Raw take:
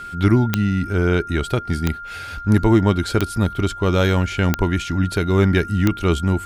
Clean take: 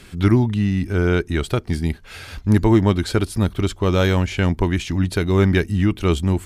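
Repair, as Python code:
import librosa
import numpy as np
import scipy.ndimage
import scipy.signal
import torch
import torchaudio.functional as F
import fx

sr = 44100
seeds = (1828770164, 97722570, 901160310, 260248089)

y = fx.fix_declick_ar(x, sr, threshold=10.0)
y = fx.notch(y, sr, hz=1400.0, q=30.0)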